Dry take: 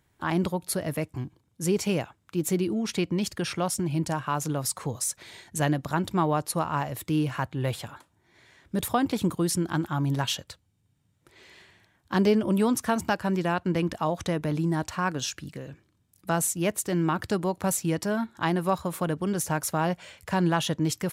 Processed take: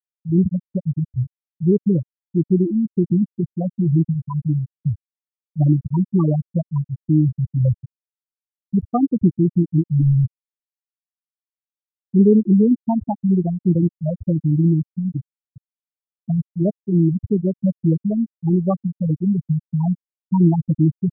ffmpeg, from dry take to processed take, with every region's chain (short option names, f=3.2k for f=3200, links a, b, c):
-filter_complex "[0:a]asettb=1/sr,asplit=3[a][b][c];[a]atrim=end=10.014[d];[b]atrim=start=10.01:end=12.15,asetpts=PTS-STARTPTS,afade=t=in:d=0.004:c=qsin,afade=t=out:st=2.136:d=0.004:c=qsin,aecho=1:1:6.4:0.78,atrim=end_sample=94374,volume=24.5dB,asoftclip=hard,volume=-24.5dB[e];[c]atrim=start=12.146[f];[d][e]acrossfade=d=0.004:c1=hsin:c2=qsin[g];[g][f]acrossfade=d=0.004:c1=qsin:c2=hsin,aemphasis=mode=reproduction:type=bsi,afftfilt=real='re*gte(hypot(re,im),0.447)':imag='im*gte(hypot(re,im),0.447)':win_size=1024:overlap=0.75,volume=5dB"